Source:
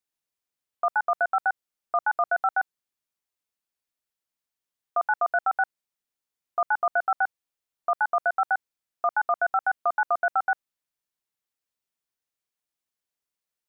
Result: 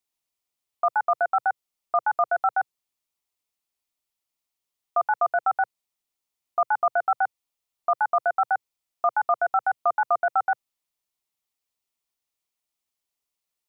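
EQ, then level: graphic EQ with 31 bands 125 Hz -7 dB, 200 Hz -5 dB, 315 Hz -3 dB, 500 Hz -5 dB, 1.6 kHz -9 dB; +3.5 dB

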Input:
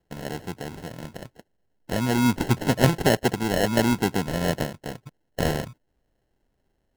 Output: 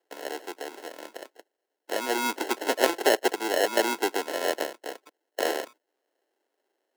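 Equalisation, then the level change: steep high-pass 330 Hz 36 dB/octave; 0.0 dB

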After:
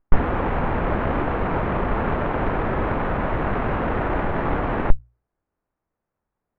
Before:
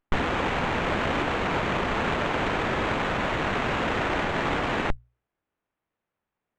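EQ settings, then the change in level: low-pass 1.4 kHz 12 dB/octave; bass shelf 68 Hz +11.5 dB; +3.0 dB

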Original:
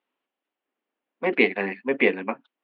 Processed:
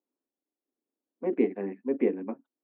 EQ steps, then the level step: band-pass filter 290 Hz, Q 1.6; distance through air 180 m; 0.0 dB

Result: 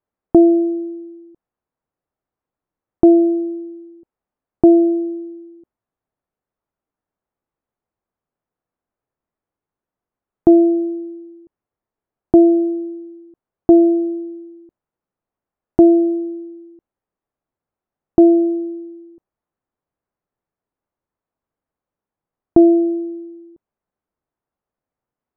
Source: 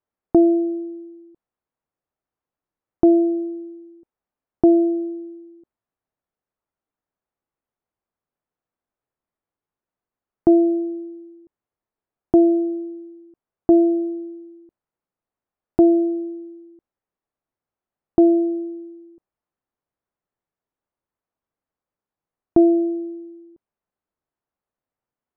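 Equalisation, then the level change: distance through air 480 m; +5.0 dB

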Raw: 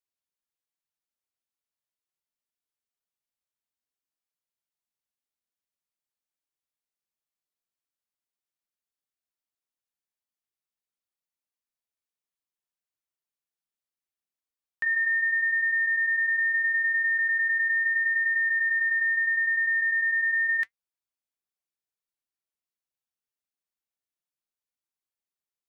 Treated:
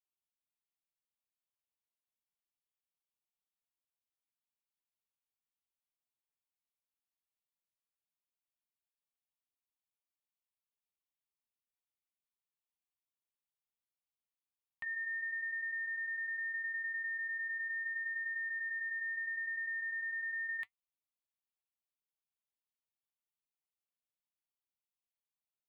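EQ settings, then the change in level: static phaser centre 1.6 kHz, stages 6; -5.5 dB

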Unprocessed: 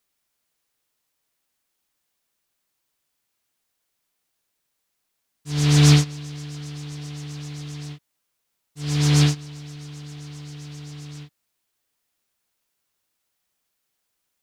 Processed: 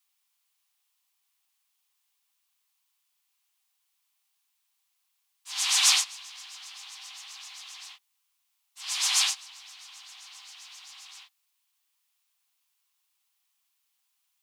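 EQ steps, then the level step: dynamic bell 9.1 kHz, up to +6 dB, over -42 dBFS, Q 0.85; rippled Chebyshev high-pass 760 Hz, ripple 6 dB; treble shelf 5 kHz +7 dB; 0.0 dB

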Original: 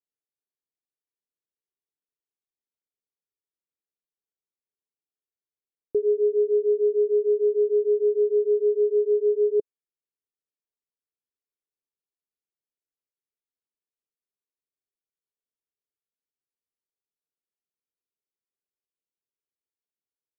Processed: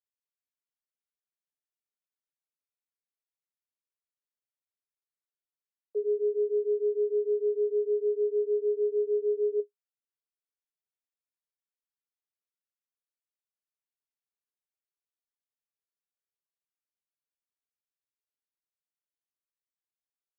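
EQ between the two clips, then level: rippled Chebyshev high-pass 400 Hz, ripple 6 dB; -5.5 dB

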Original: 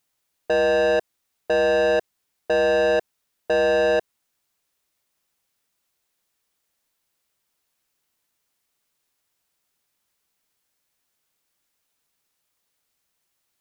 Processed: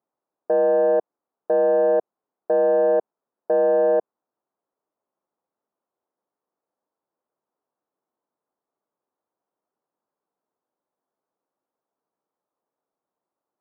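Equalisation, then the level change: high-pass 310 Hz 12 dB/octave; low-pass 1.1 kHz 24 dB/octave; bass shelf 450 Hz +5 dB; 0.0 dB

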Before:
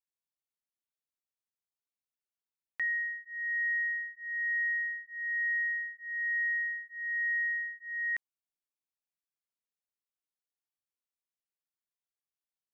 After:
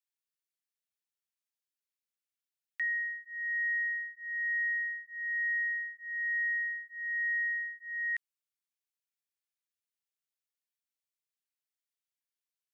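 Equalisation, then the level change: high-pass 1.5 kHz 24 dB/octave; 0.0 dB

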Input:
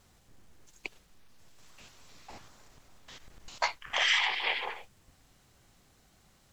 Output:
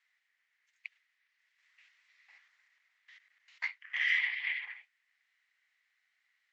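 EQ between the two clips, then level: ladder band-pass 2.1 kHz, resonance 75%; 0.0 dB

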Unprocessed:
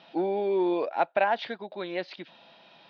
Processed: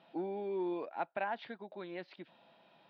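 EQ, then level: treble shelf 2 kHz -7.5 dB; dynamic bell 550 Hz, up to -7 dB, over -40 dBFS, Q 1.2; distance through air 85 m; -6.5 dB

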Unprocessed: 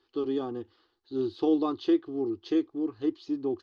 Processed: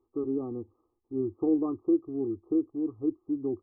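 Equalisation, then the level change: bass shelf 430 Hz +12 dB; dynamic bell 840 Hz, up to -4 dB, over -33 dBFS, Q 1.1; brick-wall FIR low-pass 1.3 kHz; -7.5 dB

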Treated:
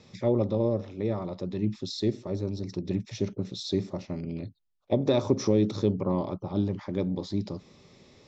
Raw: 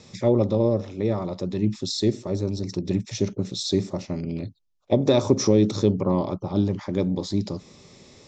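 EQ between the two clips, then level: low-pass 4.8 kHz 12 dB/octave; -5.0 dB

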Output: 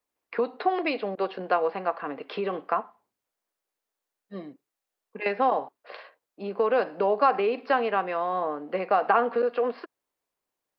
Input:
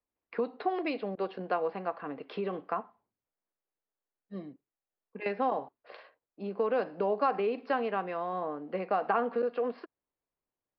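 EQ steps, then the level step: bass shelf 250 Hz -11.5 dB; +8.0 dB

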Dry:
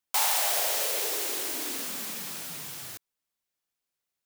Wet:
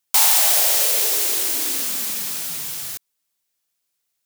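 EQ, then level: treble shelf 3 kHz +8.5 dB; +3.5 dB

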